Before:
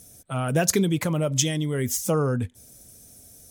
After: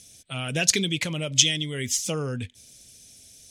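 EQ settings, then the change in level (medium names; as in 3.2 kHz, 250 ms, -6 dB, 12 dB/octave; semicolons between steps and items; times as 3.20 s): distance through air 76 m; resonant high shelf 1.8 kHz +14 dB, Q 1.5; -5.5 dB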